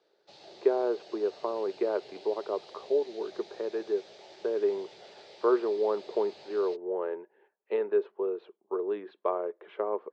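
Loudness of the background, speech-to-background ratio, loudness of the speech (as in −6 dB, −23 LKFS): −51.0 LKFS, 19.5 dB, −31.5 LKFS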